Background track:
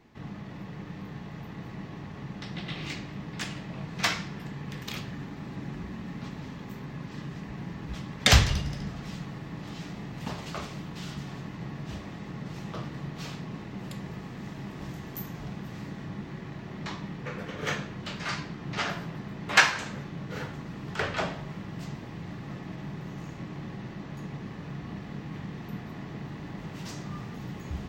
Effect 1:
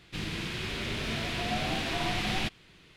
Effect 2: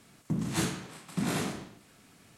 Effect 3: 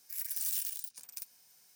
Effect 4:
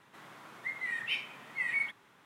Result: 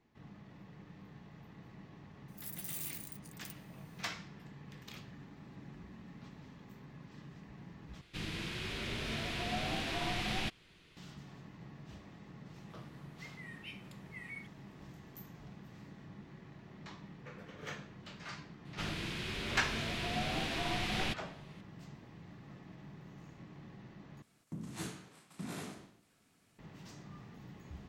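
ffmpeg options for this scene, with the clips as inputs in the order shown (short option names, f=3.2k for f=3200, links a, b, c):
-filter_complex "[1:a]asplit=2[a][b];[0:a]volume=-13.5dB[c];[3:a]bandreject=f=5.4k:w=8.9[d];[4:a]highshelf=f=5.6k:g=7.5[e];[c]asplit=3[f][g][h];[f]atrim=end=8.014[i];[a]atrim=end=2.96,asetpts=PTS-STARTPTS,volume=-5.5dB[j];[g]atrim=start=10.966:end=24.224[k];[2:a]atrim=end=2.37,asetpts=PTS-STARTPTS,volume=-12.5dB[l];[h]atrim=start=26.586[m];[d]atrim=end=1.75,asetpts=PTS-STARTPTS,volume=-8dB,afade=t=in:d=0.004:c=hsin,afade=t=out:st=1.746:d=0.004:c=hsin,adelay=2280[n];[e]atrim=end=2.25,asetpts=PTS-STARTPTS,volume=-16.5dB,afade=t=in:d=0.004:c=hsin,afade=t=out:st=2.246:d=0.004:c=hsin,adelay=12560[o];[b]atrim=end=2.96,asetpts=PTS-STARTPTS,volume=-5dB,afade=t=in:d=0.004:c=hsin,afade=t=out:st=2.956:d=0.004:c=hsin,adelay=18650[p];[i][j]acrossfade=d=0.004:c1=hsin:c2=hsin[q];[q][k]acrossfade=d=0.004:c1=hsin:c2=hsin[r];[r][l]acrossfade=d=0.004:c1=hsin:c2=hsin[s];[s][m]acrossfade=d=0.004:c1=hsin:c2=hsin[t];[t][n][o][p]amix=inputs=4:normalize=0"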